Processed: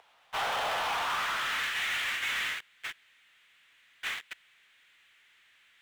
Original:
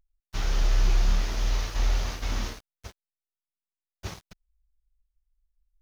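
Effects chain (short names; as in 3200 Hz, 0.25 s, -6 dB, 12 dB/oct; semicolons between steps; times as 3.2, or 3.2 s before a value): elliptic band-pass 450–3400 Hz; high-pass sweep 760 Hz -> 1900 Hz, 0.79–1.77; power-law curve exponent 0.5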